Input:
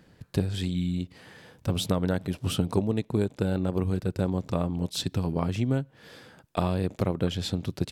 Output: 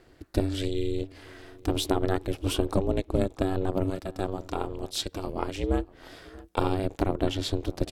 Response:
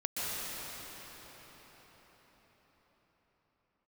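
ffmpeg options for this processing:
-filter_complex "[0:a]asettb=1/sr,asplit=3[link_01][link_02][link_03];[link_01]atrim=end=3.904[link_04];[link_02]atrim=start=3.9:end=5.64,asetpts=PTS-STARTPTS,afade=type=in:duration=0.004:curve=qsin,afade=type=out:start_time=1.736:duration=0.004:curve=qsin,lowshelf=frequency=260:gain=-9[link_05];[link_03]atrim=start=5.636[link_06];[link_04][link_05]acrossfade=duration=0.004:curve1=hsin:curve2=qsin[link_07];[link_07][link_06]acrossfade=duration=0.004:curve1=qsin:curve2=hsin,aeval=exprs='val(0)*sin(2*PI*190*n/s)':channel_layout=same,asplit=2[link_08][link_09];[link_09]adelay=641.4,volume=-21dB,highshelf=frequency=4000:gain=-14.4[link_10];[link_08][link_10]amix=inputs=2:normalize=0,volume=3.5dB"

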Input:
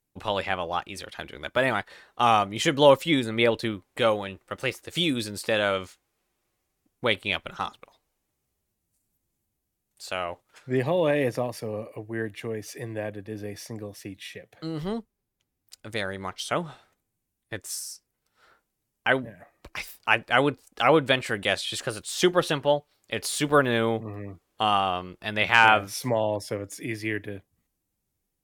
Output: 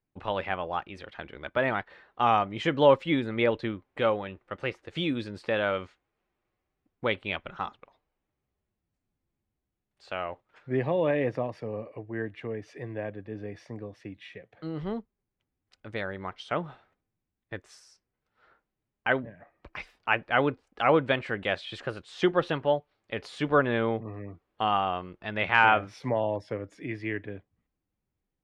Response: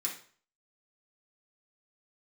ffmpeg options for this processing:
-af "lowpass=2500,volume=-2.5dB"

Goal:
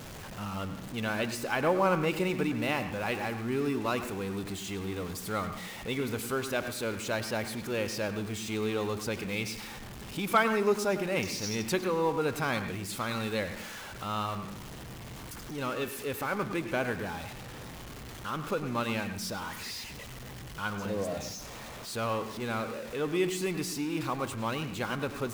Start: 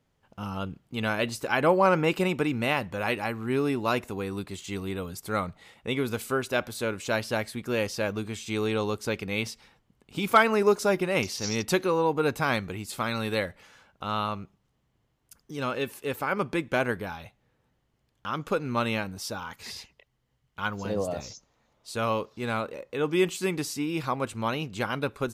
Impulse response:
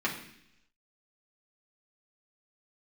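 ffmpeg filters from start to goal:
-filter_complex "[0:a]aeval=exprs='val(0)+0.5*0.0251*sgn(val(0))':channel_layout=same,asplit=2[link_01][link_02];[1:a]atrim=start_sample=2205,adelay=98[link_03];[link_02][link_03]afir=irnorm=-1:irlink=0,volume=-17.5dB[link_04];[link_01][link_04]amix=inputs=2:normalize=0,volume=-6dB"

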